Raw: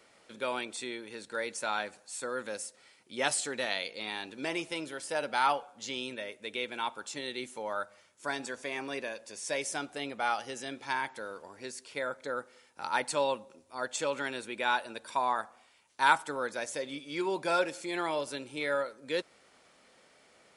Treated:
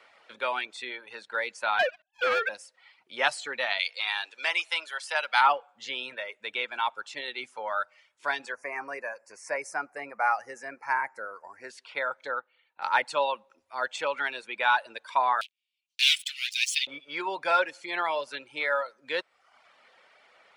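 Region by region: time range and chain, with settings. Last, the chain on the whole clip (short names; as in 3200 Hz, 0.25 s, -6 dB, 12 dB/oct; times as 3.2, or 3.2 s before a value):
1.79–2.49 sine-wave speech + sample leveller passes 5
3.79–5.41 HPF 720 Hz + high shelf 2300 Hz +8.5 dB
8.52–11.7 Butterworth band-stop 3400 Hz, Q 1 + high shelf 9500 Hz +5.5 dB
12.29–12.82 brick-wall FIR low-pass 4600 Hz + upward expander, over -47 dBFS
15.41–16.87 sample leveller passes 5 + steep high-pass 2500 Hz 48 dB/oct
whole clip: reverb removal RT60 0.7 s; three-band isolator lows -17 dB, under 590 Hz, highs -19 dB, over 3900 Hz; gain +7.5 dB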